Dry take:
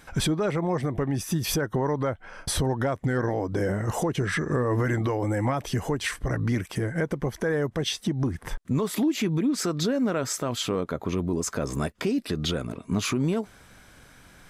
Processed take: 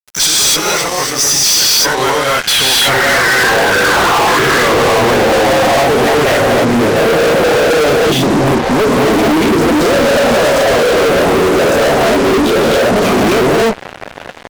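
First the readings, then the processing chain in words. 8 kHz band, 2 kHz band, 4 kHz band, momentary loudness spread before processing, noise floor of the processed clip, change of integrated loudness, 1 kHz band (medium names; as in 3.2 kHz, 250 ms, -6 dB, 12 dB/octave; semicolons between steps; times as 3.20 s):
+20.5 dB, +22.0 dB, +21.5 dB, 4 LU, -28 dBFS, +17.0 dB, +21.5 dB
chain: band-pass sweep 5.8 kHz -> 620 Hz, 1.24–5.06 s; gated-style reverb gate 310 ms rising, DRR -6 dB; fuzz box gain 48 dB, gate -52 dBFS; trim +4 dB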